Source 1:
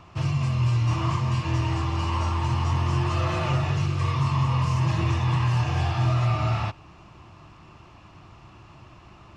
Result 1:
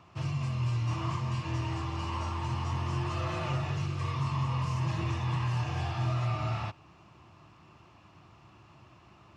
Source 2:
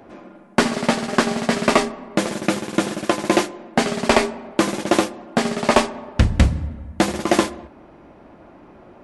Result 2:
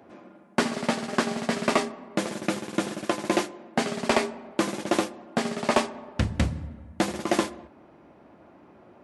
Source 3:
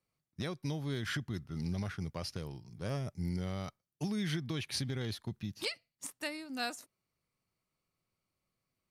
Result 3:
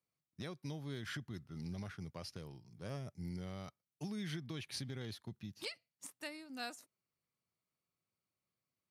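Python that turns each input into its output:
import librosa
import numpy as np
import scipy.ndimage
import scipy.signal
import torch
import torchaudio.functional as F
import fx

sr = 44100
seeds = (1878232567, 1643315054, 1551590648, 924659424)

y = scipy.signal.sosfilt(scipy.signal.butter(2, 81.0, 'highpass', fs=sr, output='sos'), x)
y = y * 10.0 ** (-7.0 / 20.0)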